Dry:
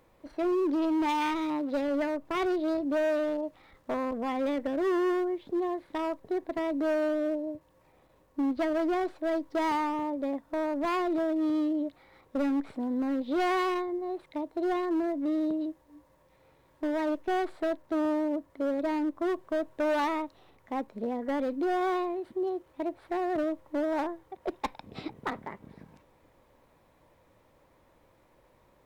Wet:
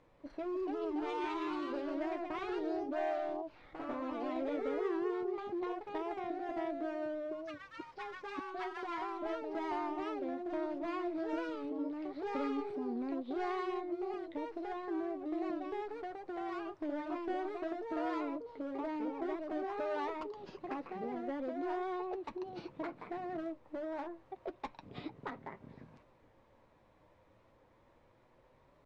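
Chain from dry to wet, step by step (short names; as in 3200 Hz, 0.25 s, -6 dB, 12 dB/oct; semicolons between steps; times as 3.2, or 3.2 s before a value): 8.39–9.2 Chebyshev high-pass 780 Hz, order 8; compressor 2.5:1, threshold -38 dBFS, peak gain reduction 8 dB; flange 0.24 Hz, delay 6.7 ms, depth 3.2 ms, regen -46%; echoes that change speed 0.329 s, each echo +2 st, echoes 2; air absorption 96 m; record warp 45 rpm, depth 100 cents; gain +1 dB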